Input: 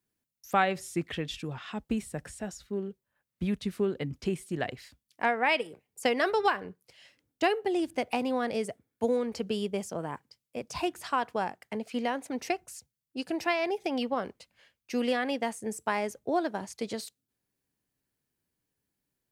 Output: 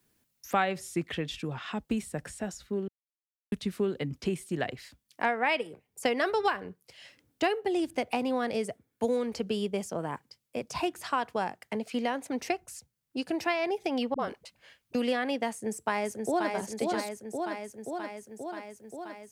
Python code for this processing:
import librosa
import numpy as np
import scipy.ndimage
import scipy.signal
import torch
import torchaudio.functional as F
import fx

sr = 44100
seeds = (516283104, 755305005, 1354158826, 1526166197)

y = fx.dispersion(x, sr, late='highs', ms=52.0, hz=330.0, at=(14.14, 14.95))
y = fx.echo_throw(y, sr, start_s=15.51, length_s=1.01, ms=530, feedback_pct=65, wet_db=-4.0)
y = fx.edit(y, sr, fx.silence(start_s=2.88, length_s=0.64), tone=tone)
y = fx.band_squash(y, sr, depth_pct=40)